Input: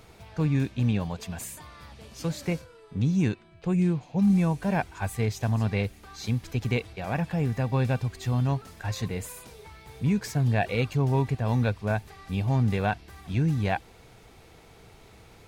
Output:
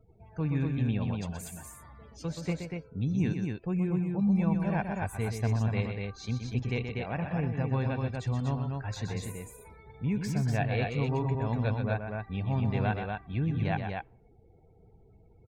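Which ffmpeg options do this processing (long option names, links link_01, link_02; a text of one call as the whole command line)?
ffmpeg -i in.wav -af "afftdn=noise_reduction=35:noise_floor=-47,aecho=1:1:125.4|242:0.447|0.631,volume=-5.5dB" out.wav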